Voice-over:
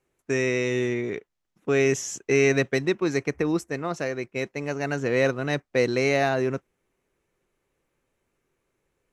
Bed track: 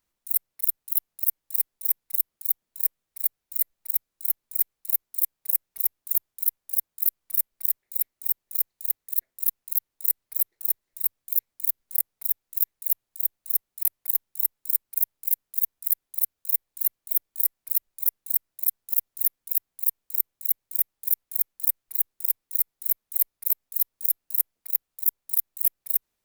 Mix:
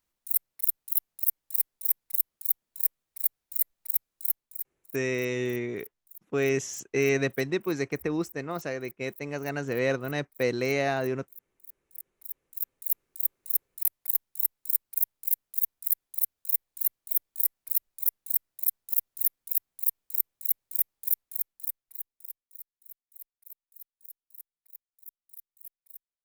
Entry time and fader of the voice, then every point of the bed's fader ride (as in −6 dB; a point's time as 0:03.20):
4.65 s, −4.5 dB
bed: 0:04.27 −2 dB
0:05.01 −25 dB
0:11.64 −25 dB
0:12.98 −2.5 dB
0:21.10 −2.5 dB
0:22.79 −24 dB